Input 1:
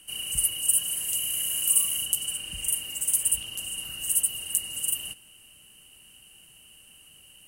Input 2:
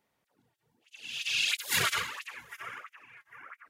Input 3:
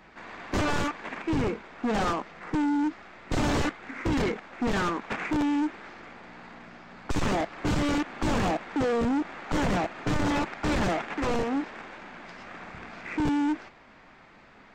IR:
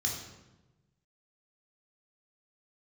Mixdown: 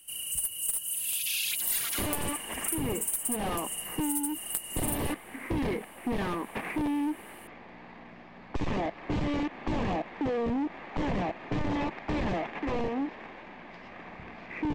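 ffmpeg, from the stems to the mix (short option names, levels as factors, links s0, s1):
-filter_complex "[0:a]aeval=exprs='clip(val(0),-1,0.0891)':c=same,volume=0.398[s0];[1:a]equalizer=f=4100:t=o:w=2.9:g=9.5,aexciter=amount=5.2:drive=6:freq=12000,volume=0.316[s1];[2:a]lowpass=2800,equalizer=f=1400:w=4.9:g=-11.5,adelay=1450,volume=0.891[s2];[s0][s1][s2]amix=inputs=3:normalize=0,highshelf=f=7800:g=11.5,acompressor=threshold=0.0398:ratio=4"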